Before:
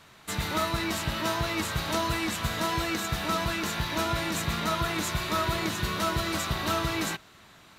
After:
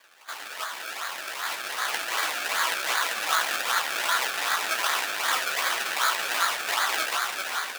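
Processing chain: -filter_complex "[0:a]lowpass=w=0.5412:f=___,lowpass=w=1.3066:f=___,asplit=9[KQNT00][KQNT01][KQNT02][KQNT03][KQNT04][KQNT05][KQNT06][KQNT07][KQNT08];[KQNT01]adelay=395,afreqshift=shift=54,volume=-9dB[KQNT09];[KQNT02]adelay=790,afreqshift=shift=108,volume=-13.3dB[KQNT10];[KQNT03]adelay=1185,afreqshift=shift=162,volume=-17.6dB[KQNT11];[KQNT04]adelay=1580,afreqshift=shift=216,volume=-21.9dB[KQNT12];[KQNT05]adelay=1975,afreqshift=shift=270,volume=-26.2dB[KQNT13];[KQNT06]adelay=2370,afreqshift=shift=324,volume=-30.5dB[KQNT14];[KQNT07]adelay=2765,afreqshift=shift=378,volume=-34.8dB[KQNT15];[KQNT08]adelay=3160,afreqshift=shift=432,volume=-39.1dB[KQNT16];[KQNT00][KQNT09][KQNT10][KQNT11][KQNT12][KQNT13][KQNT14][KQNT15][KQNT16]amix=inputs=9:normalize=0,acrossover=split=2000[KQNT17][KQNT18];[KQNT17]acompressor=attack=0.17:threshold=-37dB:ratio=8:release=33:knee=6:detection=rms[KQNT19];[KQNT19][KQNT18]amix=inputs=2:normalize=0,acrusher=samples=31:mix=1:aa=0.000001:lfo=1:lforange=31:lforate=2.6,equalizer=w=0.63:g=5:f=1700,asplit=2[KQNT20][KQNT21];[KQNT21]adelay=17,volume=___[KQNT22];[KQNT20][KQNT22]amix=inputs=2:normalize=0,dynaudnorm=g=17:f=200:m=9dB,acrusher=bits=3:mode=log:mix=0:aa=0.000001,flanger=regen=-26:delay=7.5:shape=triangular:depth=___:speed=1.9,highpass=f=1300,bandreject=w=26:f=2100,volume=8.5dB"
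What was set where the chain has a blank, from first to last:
3800, 3800, -10dB, 8.4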